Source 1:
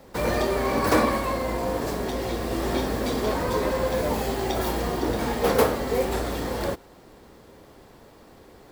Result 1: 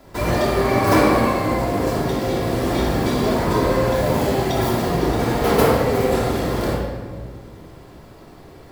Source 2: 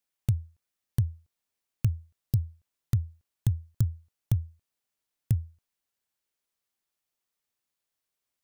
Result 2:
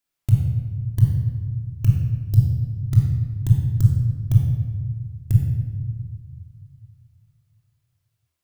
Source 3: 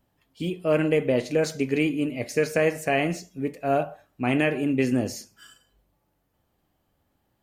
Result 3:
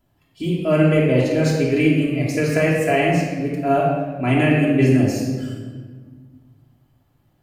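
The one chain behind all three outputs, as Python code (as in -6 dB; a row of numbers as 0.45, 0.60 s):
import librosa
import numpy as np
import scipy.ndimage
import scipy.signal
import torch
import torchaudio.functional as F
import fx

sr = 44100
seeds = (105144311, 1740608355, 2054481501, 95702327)

y = fx.peak_eq(x, sr, hz=120.0, db=4.5, octaves=0.74)
y = fx.room_shoebox(y, sr, seeds[0], volume_m3=1700.0, walls='mixed', distance_m=3.0)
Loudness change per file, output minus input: +6.0, +10.0, +6.5 LU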